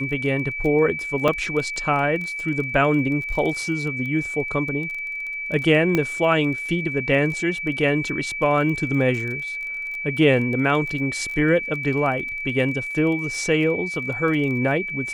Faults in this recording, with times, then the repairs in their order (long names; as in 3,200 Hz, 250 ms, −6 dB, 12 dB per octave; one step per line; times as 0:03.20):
surface crackle 20 per second −29 dBFS
whistle 2,300 Hz −27 dBFS
0:01.28: drop-out 4.3 ms
0:05.95: click −8 dBFS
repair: click removal
notch filter 2,300 Hz, Q 30
repair the gap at 0:01.28, 4.3 ms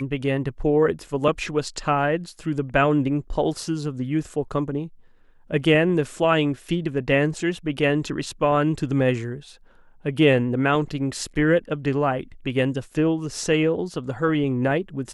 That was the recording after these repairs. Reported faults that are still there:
none of them is left